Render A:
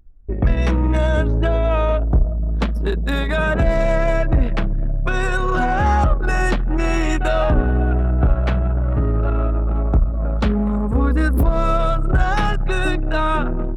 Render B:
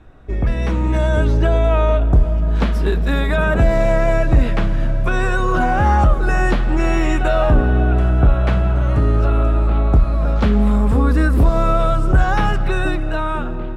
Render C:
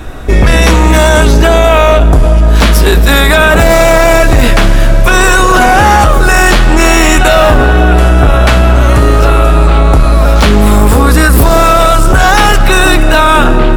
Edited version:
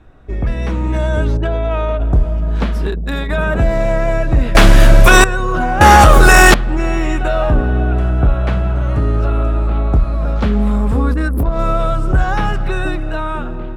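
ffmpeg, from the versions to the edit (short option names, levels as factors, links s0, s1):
-filter_complex "[0:a]asplit=3[s0][s1][s2];[2:a]asplit=2[s3][s4];[1:a]asplit=6[s5][s6][s7][s8][s9][s10];[s5]atrim=end=1.372[s11];[s0]atrim=start=1.368:end=2.002[s12];[s6]atrim=start=1.998:end=2.872[s13];[s1]atrim=start=2.868:end=3.302[s14];[s7]atrim=start=3.298:end=4.552[s15];[s3]atrim=start=4.548:end=5.242[s16];[s8]atrim=start=5.238:end=5.812[s17];[s4]atrim=start=5.808:end=6.542[s18];[s9]atrim=start=6.538:end=11.142[s19];[s2]atrim=start=11.138:end=11.592[s20];[s10]atrim=start=11.588[s21];[s11][s12]acrossfade=d=0.004:c1=hsin:c2=hsin[s22];[s22][s13]acrossfade=d=0.004:c1=hsin:c2=hsin[s23];[s23][s14]acrossfade=d=0.004:c1=hsin:c2=hsin[s24];[s24][s15]acrossfade=d=0.004:c1=hsin:c2=hsin[s25];[s25][s16]acrossfade=d=0.004:c1=hsin:c2=hsin[s26];[s26][s17]acrossfade=d=0.004:c1=hsin:c2=hsin[s27];[s27][s18]acrossfade=d=0.004:c1=hsin:c2=hsin[s28];[s28][s19]acrossfade=d=0.004:c1=hsin:c2=hsin[s29];[s29][s20]acrossfade=d=0.004:c1=hsin:c2=hsin[s30];[s30][s21]acrossfade=d=0.004:c1=hsin:c2=hsin"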